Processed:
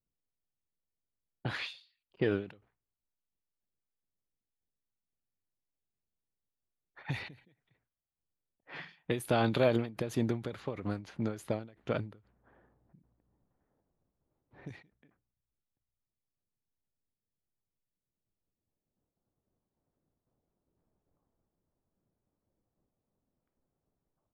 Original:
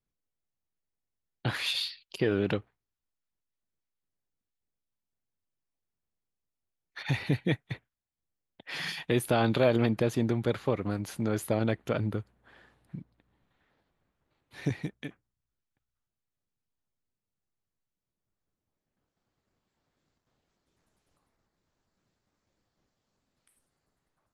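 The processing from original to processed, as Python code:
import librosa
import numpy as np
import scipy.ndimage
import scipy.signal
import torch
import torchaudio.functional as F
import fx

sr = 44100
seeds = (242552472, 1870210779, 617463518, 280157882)

y = fx.env_lowpass(x, sr, base_hz=730.0, full_db=-24.5)
y = fx.end_taper(y, sr, db_per_s=140.0)
y = y * 10.0 ** (-2.5 / 20.0)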